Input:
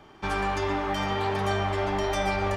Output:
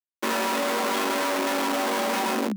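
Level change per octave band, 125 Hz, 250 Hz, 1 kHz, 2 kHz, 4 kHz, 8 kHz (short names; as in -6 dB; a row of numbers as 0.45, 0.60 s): under -15 dB, +4.5 dB, +1.5 dB, +3.0 dB, +5.0 dB, +11.5 dB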